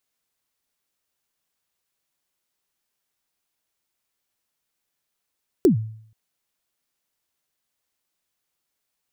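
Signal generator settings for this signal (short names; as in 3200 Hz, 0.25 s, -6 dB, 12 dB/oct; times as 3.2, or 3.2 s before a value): kick drum length 0.48 s, from 420 Hz, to 110 Hz, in 0.113 s, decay 0.61 s, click on, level -9 dB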